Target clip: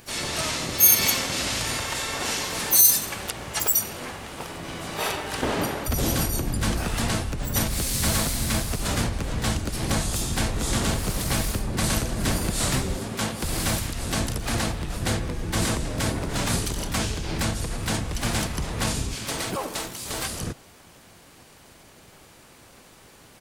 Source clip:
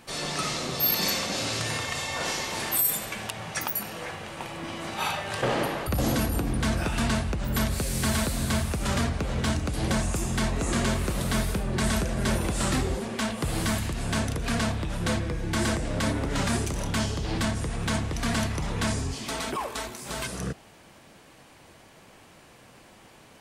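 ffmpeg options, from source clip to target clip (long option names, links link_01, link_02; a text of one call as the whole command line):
ffmpeg -i in.wav -filter_complex "[0:a]asplit=4[link_01][link_02][link_03][link_04];[link_02]asetrate=22050,aresample=44100,atempo=2,volume=0dB[link_05];[link_03]asetrate=33038,aresample=44100,atempo=1.33484,volume=-5dB[link_06];[link_04]asetrate=55563,aresample=44100,atempo=0.793701,volume=-10dB[link_07];[link_01][link_05][link_06][link_07]amix=inputs=4:normalize=0,crystalizer=i=1.5:c=0,volume=-3dB" out.wav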